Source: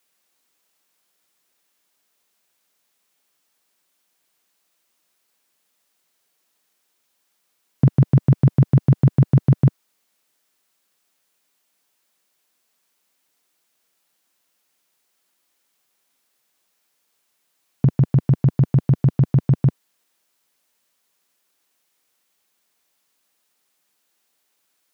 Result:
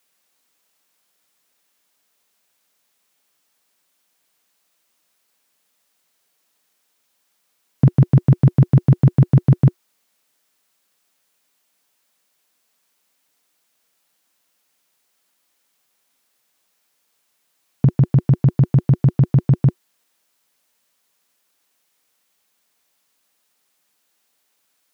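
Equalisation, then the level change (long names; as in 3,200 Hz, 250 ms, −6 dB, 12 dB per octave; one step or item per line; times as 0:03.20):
notch filter 360 Hz, Q 12
+2.0 dB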